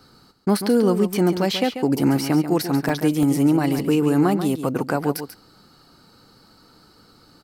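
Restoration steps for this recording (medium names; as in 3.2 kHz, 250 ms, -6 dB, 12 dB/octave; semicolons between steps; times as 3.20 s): interpolate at 2.89/3.23/3.79 s, 1.8 ms; inverse comb 139 ms -10 dB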